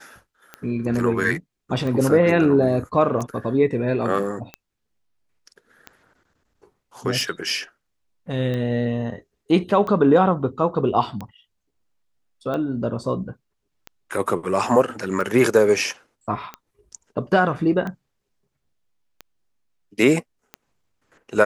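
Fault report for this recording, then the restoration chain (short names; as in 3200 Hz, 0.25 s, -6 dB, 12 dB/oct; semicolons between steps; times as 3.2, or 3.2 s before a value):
tick 45 rpm -18 dBFS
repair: de-click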